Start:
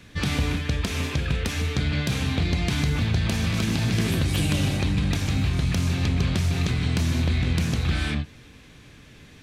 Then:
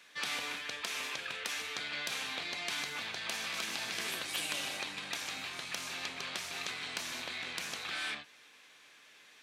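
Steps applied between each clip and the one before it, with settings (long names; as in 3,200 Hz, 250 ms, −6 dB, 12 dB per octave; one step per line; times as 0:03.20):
high-pass filter 790 Hz 12 dB per octave
level −5 dB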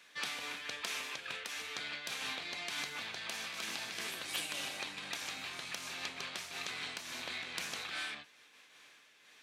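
amplitude modulation by smooth noise, depth 65%
level +1 dB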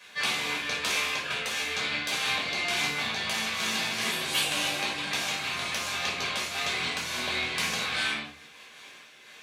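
rectangular room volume 440 cubic metres, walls furnished, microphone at 5.5 metres
level +3.5 dB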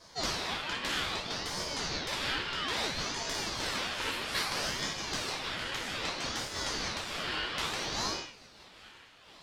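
high-shelf EQ 4,900 Hz −9 dB
ring modulator whose carrier an LFO sweeps 1,700 Hz, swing 60%, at 0.61 Hz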